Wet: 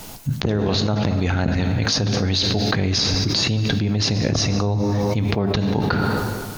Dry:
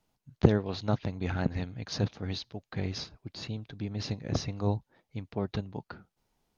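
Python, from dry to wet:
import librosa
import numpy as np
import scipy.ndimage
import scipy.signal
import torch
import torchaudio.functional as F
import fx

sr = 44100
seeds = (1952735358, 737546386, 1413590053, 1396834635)

p1 = fx.high_shelf(x, sr, hz=5900.0, db=10.0)
p2 = np.clip(p1, -10.0 ** (-17.5 / 20.0), 10.0 ** (-17.5 / 20.0))
p3 = p1 + (p2 * 10.0 ** (-11.0 / 20.0))
p4 = fx.rev_plate(p3, sr, seeds[0], rt60_s=1.7, hf_ratio=0.85, predelay_ms=0, drr_db=10.5)
p5 = fx.env_flatten(p4, sr, amount_pct=100)
y = p5 * 10.0 ** (-5.0 / 20.0)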